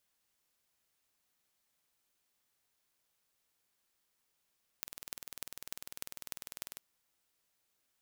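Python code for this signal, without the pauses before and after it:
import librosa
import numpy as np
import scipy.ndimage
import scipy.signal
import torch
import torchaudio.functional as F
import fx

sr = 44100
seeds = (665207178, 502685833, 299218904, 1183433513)

y = fx.impulse_train(sr, length_s=1.95, per_s=20.1, accent_every=6, level_db=-10.5)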